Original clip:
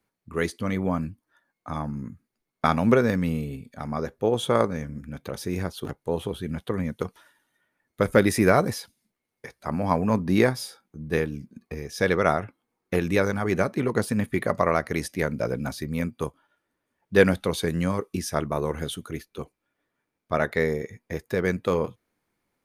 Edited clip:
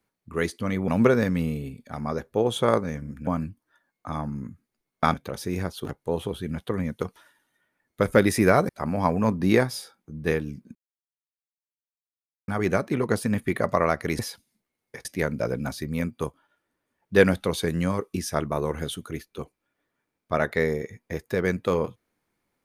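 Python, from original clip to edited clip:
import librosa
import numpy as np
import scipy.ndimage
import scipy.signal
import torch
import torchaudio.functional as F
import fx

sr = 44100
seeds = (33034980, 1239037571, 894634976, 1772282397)

y = fx.edit(x, sr, fx.move(start_s=0.88, length_s=1.87, to_s=5.14),
    fx.move(start_s=8.69, length_s=0.86, to_s=15.05),
    fx.silence(start_s=11.61, length_s=1.73), tone=tone)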